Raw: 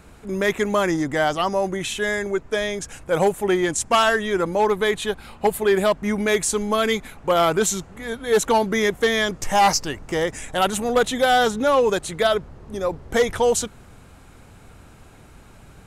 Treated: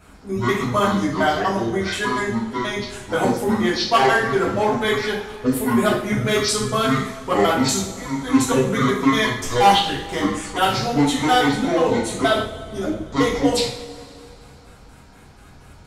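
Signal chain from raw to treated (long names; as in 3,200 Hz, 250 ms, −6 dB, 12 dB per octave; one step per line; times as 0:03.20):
pitch shifter gated in a rhythm −9 semitones, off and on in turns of 120 ms
coupled-rooms reverb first 0.52 s, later 2.7 s, from −19 dB, DRR −9.5 dB
level −7 dB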